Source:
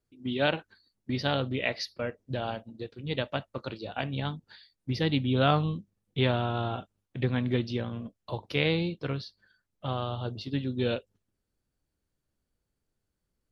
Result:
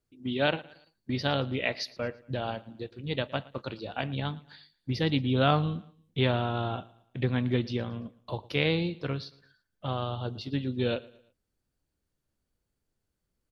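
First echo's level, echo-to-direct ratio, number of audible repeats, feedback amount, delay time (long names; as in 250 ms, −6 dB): −21.5 dB, −20.5 dB, 2, 41%, 113 ms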